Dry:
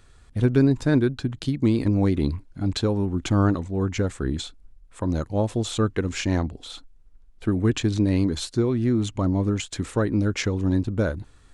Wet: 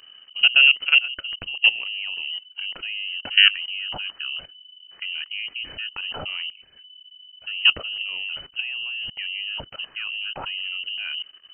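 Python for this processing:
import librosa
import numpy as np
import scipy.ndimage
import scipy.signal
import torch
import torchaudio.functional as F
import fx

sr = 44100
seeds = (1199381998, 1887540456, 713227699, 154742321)

y = fx.level_steps(x, sr, step_db=18)
y = fx.freq_invert(y, sr, carrier_hz=3000)
y = y * 10.0 ** (5.5 / 20.0)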